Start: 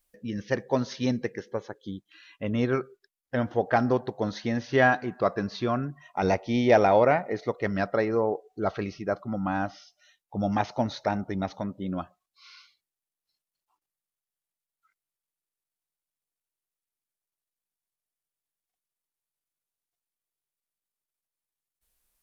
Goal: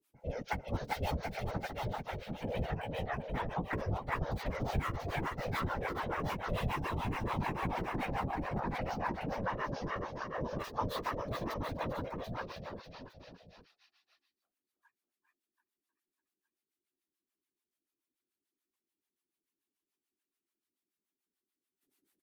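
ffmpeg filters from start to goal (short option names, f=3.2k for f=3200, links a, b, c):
-filter_complex "[0:a]aeval=exprs='val(0)*sin(2*PI*320*n/s)':c=same,acrossover=split=270|3200[a][b][c];[b]highshelf=f=2.2k:g=10[d];[c]aeval=exprs='(mod(158*val(0)+1,2)-1)/158':c=same[e];[a][d][e]amix=inputs=3:normalize=0,asplit=2[f][g];[g]adelay=13,volume=-3.5dB[h];[f][h]amix=inputs=2:normalize=0,aecho=1:1:390|741|1057|1341|1597:0.631|0.398|0.251|0.158|0.1,acrossover=split=150|3000[i][j][k];[j]acompressor=threshold=-27dB:ratio=6[l];[i][l][k]amix=inputs=3:normalize=0,acrossover=split=520[m][n];[m]aeval=exprs='val(0)*(1-1/2+1/2*cos(2*PI*6.9*n/s))':c=same[o];[n]aeval=exprs='val(0)*(1-1/2-1/2*cos(2*PI*6.9*n/s))':c=same[p];[o][p]amix=inputs=2:normalize=0,acompressor=threshold=-30dB:ratio=6,afftfilt=real='hypot(re,im)*cos(2*PI*random(0))':imag='hypot(re,im)*sin(2*PI*random(1))':win_size=512:overlap=0.75,volume=5.5dB"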